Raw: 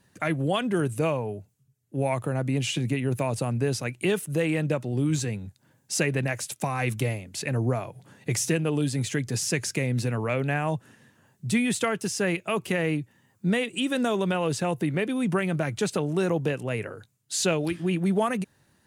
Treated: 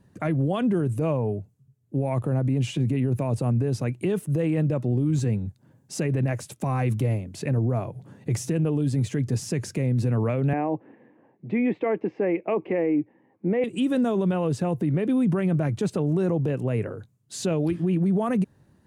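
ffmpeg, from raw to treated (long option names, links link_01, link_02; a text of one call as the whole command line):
ffmpeg -i in.wav -filter_complex "[0:a]asettb=1/sr,asplit=3[link_01][link_02][link_03];[link_01]atrim=end=10.534[link_04];[link_02]atrim=start=10.53:end=13.64,asetpts=PTS-STARTPTS,afade=type=in:duration=0.004:curve=qsin,afade=type=out:start_time=3.106:duration=0.004:curve=qsin,highpass=300,equalizer=frequency=310:width_type=q:width=4:gain=10,equalizer=frequency=500:width_type=q:width=4:gain=6,equalizer=frequency=800:width_type=q:width=4:gain=6,equalizer=frequency=1400:width_type=q:width=4:gain=-8,equalizer=frequency=2200:width_type=q:width=4:gain=8,lowpass=frequency=2300:width=0.5412,lowpass=frequency=2300:width=1.3066[link_05];[link_03]atrim=start=13.636[link_06];[link_04][link_05]acrossfade=duration=0.004:curve1=hsin:curve2=qsin[link_07];[link_07][link_06]acrossfade=duration=0.004:curve1=qsin:curve2=hsin,tiltshelf=frequency=870:gain=8,alimiter=limit=-16.5dB:level=0:latency=1:release=37,equalizer=frequency=1100:width_type=o:width=0.3:gain=2" out.wav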